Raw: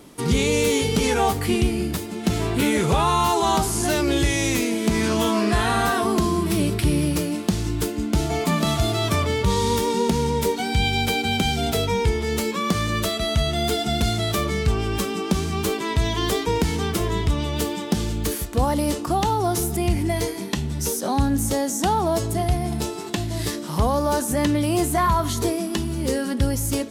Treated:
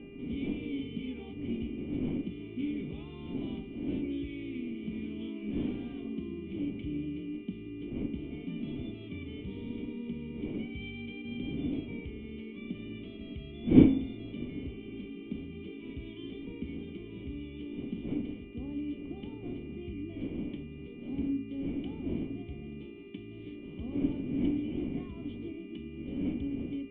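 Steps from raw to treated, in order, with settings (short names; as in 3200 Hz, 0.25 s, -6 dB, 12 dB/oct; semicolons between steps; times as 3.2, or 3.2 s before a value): wind noise 530 Hz -19 dBFS; vibrato 0.73 Hz 19 cents; buzz 400 Hz, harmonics 7, -27 dBFS -4 dB/oct; vocal tract filter i; de-hum 53.34 Hz, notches 38; gain -9 dB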